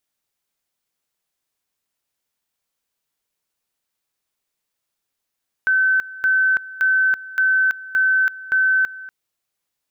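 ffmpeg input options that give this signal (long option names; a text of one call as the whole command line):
ffmpeg -f lavfi -i "aevalsrc='pow(10,(-13.5-18.5*gte(mod(t,0.57),0.33))/20)*sin(2*PI*1530*t)':duration=3.42:sample_rate=44100" out.wav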